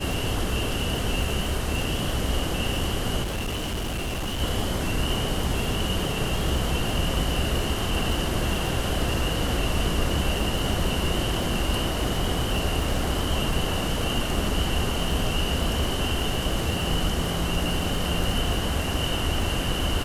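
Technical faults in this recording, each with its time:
crackle 73/s -30 dBFS
3.22–4.41 clipped -25.5 dBFS

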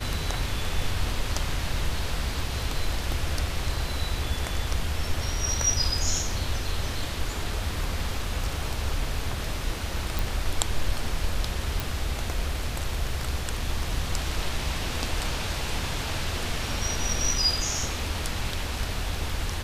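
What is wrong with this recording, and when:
10.19 pop
11.8 pop

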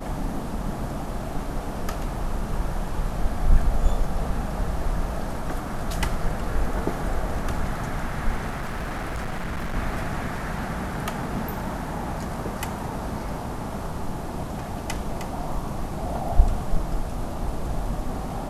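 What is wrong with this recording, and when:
8.49–9.76 clipped -25.5 dBFS

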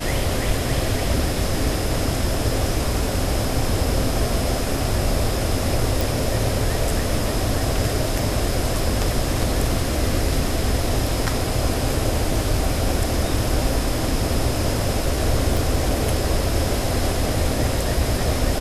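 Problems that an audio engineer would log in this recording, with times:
6.01 pop
15.57 pop

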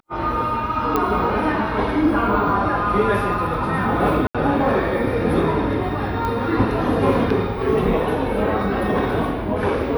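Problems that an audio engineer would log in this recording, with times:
0.96 pop -7 dBFS
4.27–4.35 gap 76 ms
6.25 pop -14 dBFS

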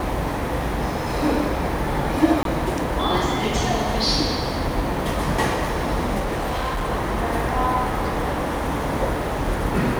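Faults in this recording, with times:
2.43–2.45 gap 22 ms
6.19–6.9 clipped -21 dBFS

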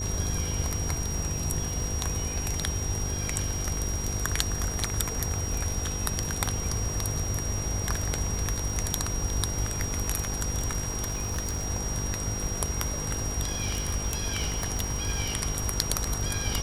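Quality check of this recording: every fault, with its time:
buzz 50 Hz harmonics 10 -35 dBFS
crackle 110/s -38 dBFS
tone 5700 Hz -34 dBFS
5.54 gap 3.2 ms
11.1–11.67 clipped -25.5 dBFS
13.47–15.18 clipped -22 dBFS

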